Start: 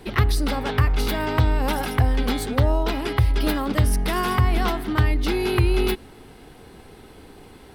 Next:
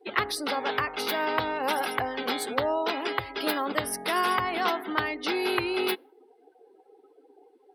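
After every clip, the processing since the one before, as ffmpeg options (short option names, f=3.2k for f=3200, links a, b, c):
-af "highpass=440,afftdn=nr=29:nf=-41"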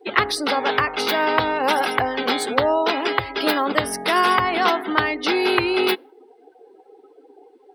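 -af "equalizer=f=12k:w=2.2:g=-12.5,volume=8dB"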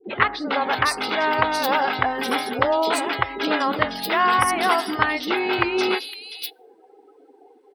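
-filter_complex "[0:a]acrossover=split=410|3600[a][b][c];[b]adelay=40[d];[c]adelay=550[e];[a][d][e]amix=inputs=3:normalize=0"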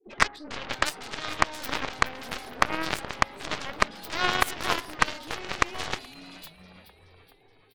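-filter_complex "[0:a]asplit=7[a][b][c][d][e][f][g];[b]adelay=424,afreqshift=-94,volume=-13dB[h];[c]adelay=848,afreqshift=-188,volume=-17.9dB[i];[d]adelay=1272,afreqshift=-282,volume=-22.8dB[j];[e]adelay=1696,afreqshift=-376,volume=-27.6dB[k];[f]adelay=2120,afreqshift=-470,volume=-32.5dB[l];[g]adelay=2544,afreqshift=-564,volume=-37.4dB[m];[a][h][i][j][k][l][m]amix=inputs=7:normalize=0,aeval=exprs='0.794*(cos(1*acos(clip(val(0)/0.794,-1,1)))-cos(1*PI/2))+0.0891*(cos(3*acos(clip(val(0)/0.794,-1,1)))-cos(3*PI/2))+0.1*(cos(4*acos(clip(val(0)/0.794,-1,1)))-cos(4*PI/2))+0.1*(cos(7*acos(clip(val(0)/0.794,-1,1)))-cos(7*PI/2))':c=same"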